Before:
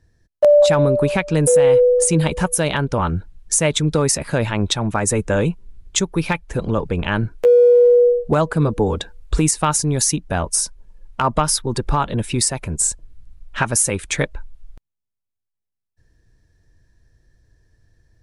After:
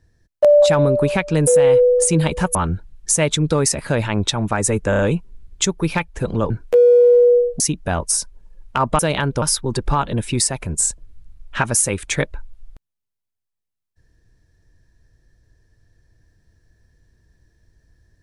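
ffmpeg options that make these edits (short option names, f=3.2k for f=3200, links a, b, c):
-filter_complex "[0:a]asplit=9[a][b][c][d][e][f][g][h][i];[a]atrim=end=2.552[j];[b]atrim=start=2.978:end=5.362[k];[c]atrim=start=5.328:end=5.362[l];[d]atrim=start=5.328:end=5.362[m];[e]atrim=start=5.328:end=6.842[n];[f]atrim=start=7.208:end=8.312[o];[g]atrim=start=10.038:end=11.432[p];[h]atrim=start=2.548:end=2.982[q];[i]atrim=start=11.428[r];[j][k]acrossfade=d=0.004:c1=hsin:c2=hsin[s];[s][l]acrossfade=d=0.004:c1=hsin:c2=hsin[t];[t][m]acrossfade=d=0.004:c1=hsin:c2=hsin[u];[u][n]acrossfade=d=0.004:c1=hsin:c2=hsin[v];[v][o]acrossfade=d=0.004:c1=hsin:c2=hsin[w];[w][p]acrossfade=d=0.004:c1=hsin:c2=hsin[x];[x][q]acrossfade=d=0.004:c1=hsin:c2=hsin[y];[y][r]acrossfade=d=0.004:c1=hsin:c2=hsin"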